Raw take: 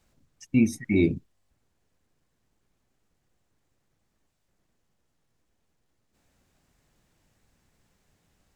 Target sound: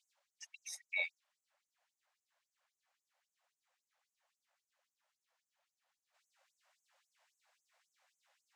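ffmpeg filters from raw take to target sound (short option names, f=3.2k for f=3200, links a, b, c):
-af "aemphasis=mode=reproduction:type=50kf,afftfilt=real='re*gte(b*sr/1024,500*pow(6200/500,0.5+0.5*sin(2*PI*3.7*pts/sr)))':imag='im*gte(b*sr/1024,500*pow(6200/500,0.5+0.5*sin(2*PI*3.7*pts/sr)))':win_size=1024:overlap=0.75,volume=1.5dB"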